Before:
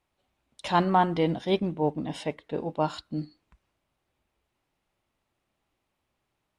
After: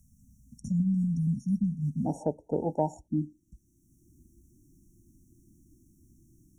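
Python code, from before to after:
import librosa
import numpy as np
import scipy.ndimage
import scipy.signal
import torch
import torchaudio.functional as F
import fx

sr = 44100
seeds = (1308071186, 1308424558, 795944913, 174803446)

y = fx.brickwall_bandstop(x, sr, low_hz=fx.steps((0.0, 260.0), (2.04, 940.0), (3.06, 360.0)), high_hz=5500.0)
y = fx.band_squash(y, sr, depth_pct=70)
y = y * librosa.db_to_amplitude(2.5)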